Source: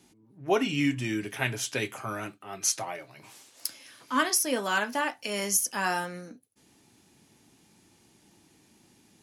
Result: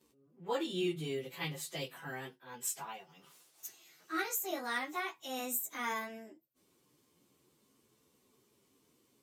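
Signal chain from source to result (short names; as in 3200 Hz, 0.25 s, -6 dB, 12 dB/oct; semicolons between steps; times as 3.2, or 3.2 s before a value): pitch shift by moving bins +4 st; gain -6.5 dB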